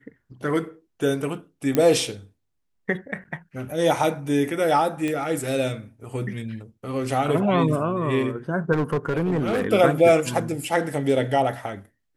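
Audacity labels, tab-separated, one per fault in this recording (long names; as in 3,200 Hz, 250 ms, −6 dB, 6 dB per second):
1.750000	1.750000	click −8 dBFS
5.080000	5.080000	click −15 dBFS
8.720000	9.670000	clipping −18.5 dBFS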